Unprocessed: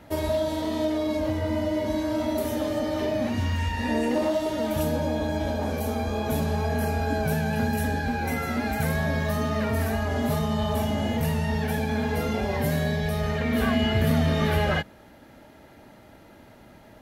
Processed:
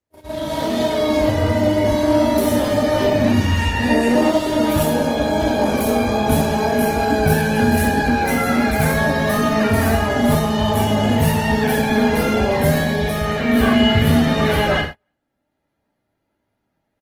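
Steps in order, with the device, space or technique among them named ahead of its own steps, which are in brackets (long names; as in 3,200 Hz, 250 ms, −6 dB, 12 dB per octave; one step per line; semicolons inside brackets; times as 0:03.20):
speakerphone in a meeting room (convolution reverb RT60 0.50 s, pre-delay 13 ms, DRR 2.5 dB; far-end echo of a speakerphone 300 ms, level −20 dB; automatic gain control gain up to 13 dB; noise gate −23 dBFS, range −36 dB; level −2 dB; Opus 20 kbit/s 48,000 Hz)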